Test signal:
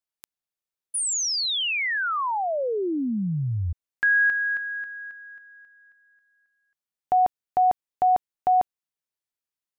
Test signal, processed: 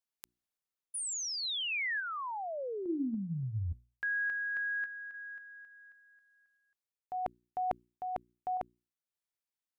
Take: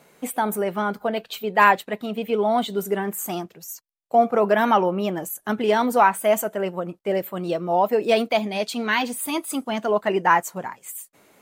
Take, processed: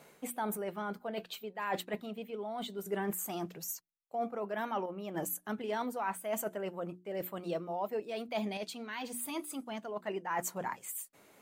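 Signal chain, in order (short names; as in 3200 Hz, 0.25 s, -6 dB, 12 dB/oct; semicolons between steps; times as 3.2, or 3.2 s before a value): reverse; compressor 10:1, threshold -31 dBFS; reverse; notches 60/120/180/240/300/360 Hz; random-step tremolo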